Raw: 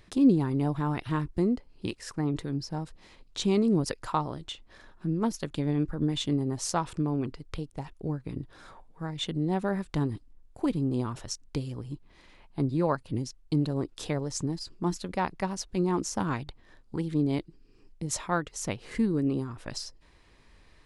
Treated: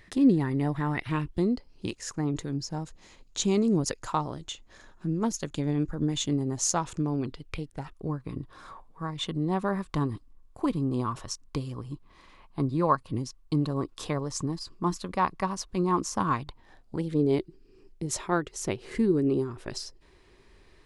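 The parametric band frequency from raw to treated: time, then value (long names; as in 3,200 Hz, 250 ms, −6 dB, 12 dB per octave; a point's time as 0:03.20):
parametric band +12.5 dB 0.27 octaves
0:00.97 1,900 Hz
0:01.85 6,700 Hz
0:07.00 6,700 Hz
0:07.96 1,100 Hz
0:16.44 1,100 Hz
0:17.39 380 Hz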